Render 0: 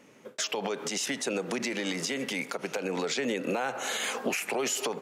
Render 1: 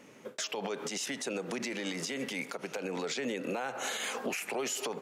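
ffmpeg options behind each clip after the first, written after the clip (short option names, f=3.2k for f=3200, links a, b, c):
-af "alimiter=level_in=3dB:limit=-24dB:level=0:latency=1:release=306,volume=-3dB,volume=1.5dB"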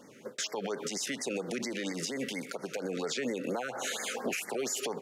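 -af "afftfilt=real='re*(1-between(b*sr/1024,810*pow(3200/810,0.5+0.5*sin(2*PI*4.3*pts/sr))/1.41,810*pow(3200/810,0.5+0.5*sin(2*PI*4.3*pts/sr))*1.41))':imag='im*(1-between(b*sr/1024,810*pow(3200/810,0.5+0.5*sin(2*PI*4.3*pts/sr))/1.41,810*pow(3200/810,0.5+0.5*sin(2*PI*4.3*pts/sr))*1.41))':win_size=1024:overlap=0.75,volume=1.5dB"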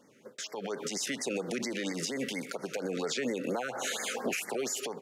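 -af "dynaudnorm=f=250:g=5:m=8.5dB,volume=-7.5dB"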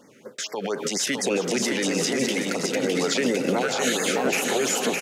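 -af "aecho=1:1:610|976|1196|1327|1406:0.631|0.398|0.251|0.158|0.1,volume=8.5dB"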